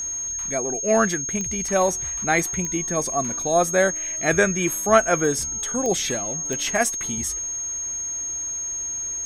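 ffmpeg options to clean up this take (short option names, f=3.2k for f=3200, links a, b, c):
-af "adeclick=t=4,bandreject=f=6.5k:w=30"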